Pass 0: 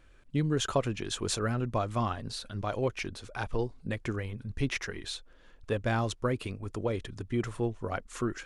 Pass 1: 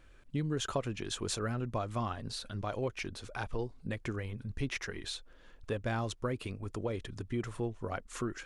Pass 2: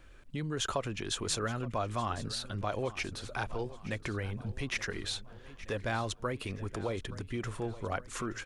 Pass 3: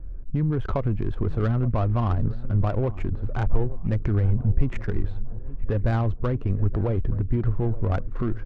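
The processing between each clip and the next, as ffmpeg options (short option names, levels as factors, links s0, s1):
-af "acompressor=threshold=0.0112:ratio=1.5"
-filter_complex "[0:a]acrossover=split=570|1800[s0][s1][s2];[s0]alimiter=level_in=3.16:limit=0.0631:level=0:latency=1,volume=0.316[s3];[s3][s1][s2]amix=inputs=3:normalize=0,aecho=1:1:873|1746|2619|3492:0.15|0.0748|0.0374|0.0187,volume=1.5"
-af "aemphasis=mode=reproduction:type=riaa,adynamicsmooth=sensitivity=2.5:basefreq=770,volume=1.58"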